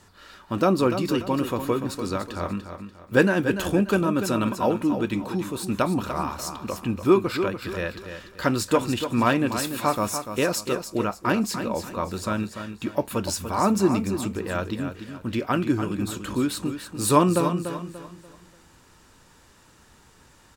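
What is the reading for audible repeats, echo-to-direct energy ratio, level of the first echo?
3, -8.5 dB, -9.0 dB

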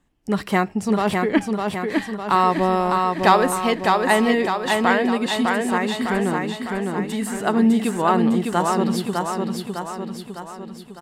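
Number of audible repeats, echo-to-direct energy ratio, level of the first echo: 6, -2.0 dB, -3.5 dB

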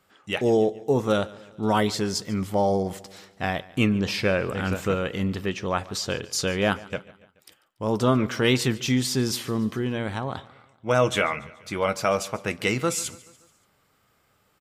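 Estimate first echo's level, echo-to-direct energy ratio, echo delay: -20.5 dB, -19.0 dB, 0.143 s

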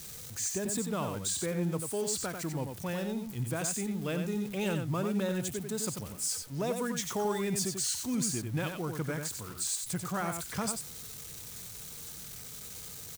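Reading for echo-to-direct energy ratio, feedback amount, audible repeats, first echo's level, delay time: -6.0 dB, no steady repeat, 1, -6.0 dB, 92 ms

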